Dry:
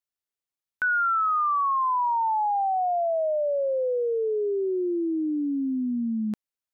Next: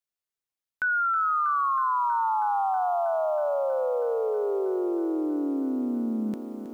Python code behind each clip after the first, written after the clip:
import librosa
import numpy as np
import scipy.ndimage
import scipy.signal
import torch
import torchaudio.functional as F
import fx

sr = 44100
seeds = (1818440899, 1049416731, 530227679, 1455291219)

y = fx.echo_crushed(x, sr, ms=320, feedback_pct=80, bits=9, wet_db=-12.0)
y = y * 10.0 ** (-1.5 / 20.0)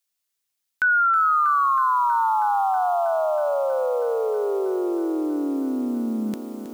y = fx.high_shelf(x, sr, hz=2000.0, db=11.0)
y = y * 10.0 ** (2.5 / 20.0)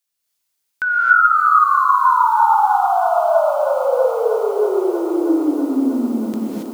y = fx.rev_gated(x, sr, seeds[0], gate_ms=300, shape='rising', drr_db=-4.5)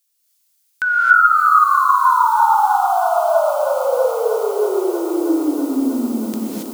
y = fx.high_shelf(x, sr, hz=3200.0, db=11.5)
y = y * 10.0 ** (-1.0 / 20.0)